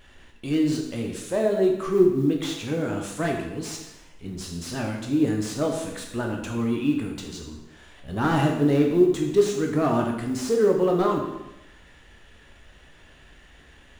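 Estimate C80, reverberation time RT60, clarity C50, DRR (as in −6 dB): 7.0 dB, 0.90 s, 4.5 dB, 0.5 dB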